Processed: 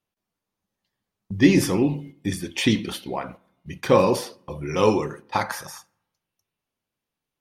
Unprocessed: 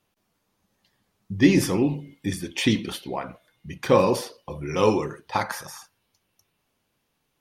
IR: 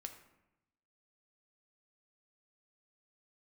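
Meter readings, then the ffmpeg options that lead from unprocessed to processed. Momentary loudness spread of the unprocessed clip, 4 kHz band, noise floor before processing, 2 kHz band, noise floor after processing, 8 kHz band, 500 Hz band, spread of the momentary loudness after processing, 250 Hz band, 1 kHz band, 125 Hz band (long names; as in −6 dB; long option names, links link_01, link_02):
18 LU, +1.0 dB, −75 dBFS, +1.0 dB, below −85 dBFS, +1.0 dB, +1.0 dB, 17 LU, +1.0 dB, +1.0 dB, +1.0 dB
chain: -filter_complex "[0:a]agate=range=-13dB:threshold=-41dB:ratio=16:detection=peak,asplit=2[link_01][link_02];[1:a]atrim=start_sample=2205[link_03];[link_02][link_03]afir=irnorm=-1:irlink=0,volume=-11.5dB[link_04];[link_01][link_04]amix=inputs=2:normalize=0"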